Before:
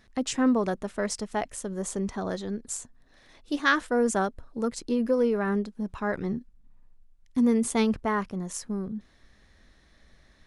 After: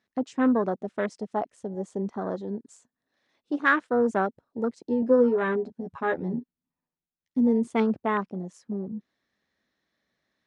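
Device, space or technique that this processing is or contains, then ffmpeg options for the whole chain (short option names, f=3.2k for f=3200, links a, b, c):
over-cleaned archive recording: -filter_complex "[0:a]highpass=180,lowpass=6.6k,afwtdn=0.02,asettb=1/sr,asplit=3[a][b][c];[a]atrim=end=5.014[d];[b]atrim=start=5.01:end=7.38,asetpts=PTS-STARTPTS,afade=t=in:d=0.004:c=qsin,afade=t=out:st=2.366:d=0.004:c=qsin,asplit=2[e][f];[f]adelay=12,volume=-3dB[g];[e][g]amix=inputs=2:normalize=0,atrim=end_sample=104517[h];[c]atrim=start=7.376[i];[d][h]acrossfade=d=0.004:c1=hsin:c2=qsin[j];[j][i]acrossfade=d=0.004:c1=qsin:c2=hsin,volume=1.5dB"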